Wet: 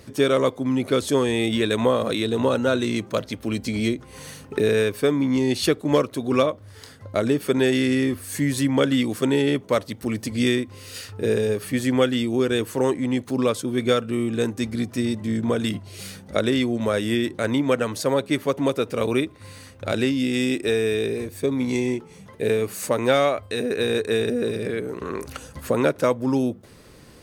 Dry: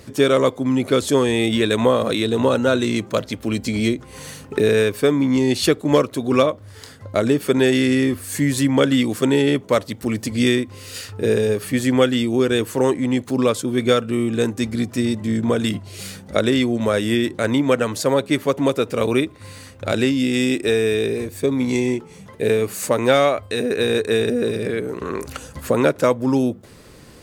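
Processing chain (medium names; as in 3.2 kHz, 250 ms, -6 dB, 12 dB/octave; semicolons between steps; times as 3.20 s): band-stop 7.3 kHz, Q 13; trim -3.5 dB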